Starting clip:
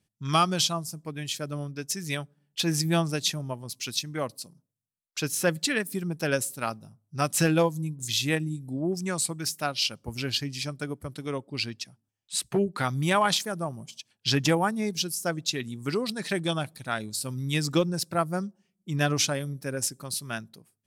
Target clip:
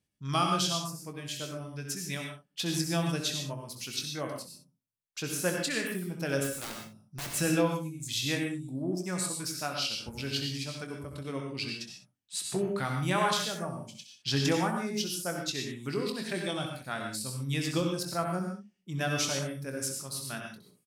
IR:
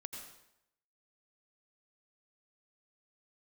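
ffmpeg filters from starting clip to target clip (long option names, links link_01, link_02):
-filter_complex "[0:a]asettb=1/sr,asplit=3[link_01][link_02][link_03];[link_01]atrim=end=6.444[link_04];[link_02]atrim=start=6.44:end=7.27,asetpts=PTS-STARTPTS,afade=type=in:duration=0.004:curve=qsin,afade=type=out:start_time=0.826:duration=0.004:curve=qsin,aeval=exprs='(mod(20*val(0)+1,2)-1)/20':channel_layout=same[link_05];[link_03]atrim=start=7.266[link_06];[link_04][link_05]acrossfade=duration=0.004:curve1=hsin:curve2=qsin[link_07];[link_07][link_06]acrossfade=duration=0.004:curve1=qsin:curve2=hsin,aecho=1:1:22|65:0.376|0.335[link_08];[1:a]atrim=start_sample=2205,afade=type=out:start_time=0.2:duration=0.01,atrim=end_sample=9261[link_09];[link_08][link_09]afir=irnorm=-1:irlink=0,volume=-1.5dB"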